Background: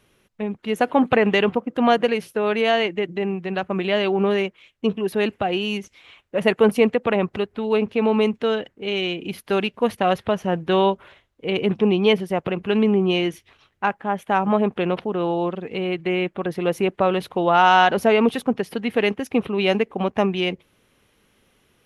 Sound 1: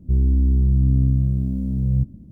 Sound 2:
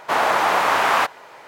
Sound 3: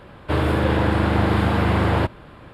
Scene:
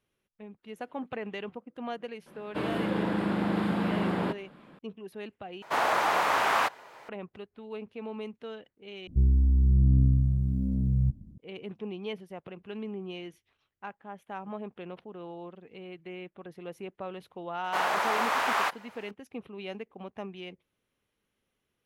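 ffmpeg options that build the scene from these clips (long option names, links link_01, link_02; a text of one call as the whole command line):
ffmpeg -i bed.wav -i cue0.wav -i cue1.wav -i cue2.wav -filter_complex "[2:a]asplit=2[link_01][link_02];[0:a]volume=-19.5dB[link_03];[3:a]lowshelf=frequency=130:width_type=q:width=3:gain=-12[link_04];[1:a]aphaser=in_gain=1:out_gain=1:delay=1.2:decay=0.43:speed=1.2:type=sinusoidal[link_05];[link_02]lowshelf=frequency=390:gain=-8[link_06];[link_03]asplit=3[link_07][link_08][link_09];[link_07]atrim=end=5.624[link_10];[link_01]atrim=end=1.47,asetpts=PTS-STARTPTS,volume=-7.5dB[link_11];[link_08]atrim=start=7.086:end=9.074[link_12];[link_05]atrim=end=2.31,asetpts=PTS-STARTPTS,volume=-9dB[link_13];[link_09]atrim=start=11.376[link_14];[link_04]atrim=end=2.53,asetpts=PTS-STARTPTS,volume=-11dB,afade=type=in:duration=0.004:curve=hsin,afade=type=out:start_time=2.526:duration=0.004:curve=hsin,adelay=2260[link_15];[link_06]atrim=end=1.47,asetpts=PTS-STARTPTS,volume=-8.5dB,afade=type=in:duration=0.004:curve=hsin,afade=type=out:start_time=1.466:duration=0.004:curve=hsin,adelay=777924S[link_16];[link_10][link_11]acrossfade=duration=0.004:curve1=hsin:curve2=hsin[link_17];[link_17][link_12]acrossfade=duration=0.004:curve1=hsin:curve2=hsin[link_18];[link_18][link_13]acrossfade=duration=0.004:curve1=hsin:curve2=hsin[link_19];[link_19][link_14]acrossfade=duration=0.004:curve1=hsin:curve2=hsin[link_20];[link_20][link_15][link_16]amix=inputs=3:normalize=0" out.wav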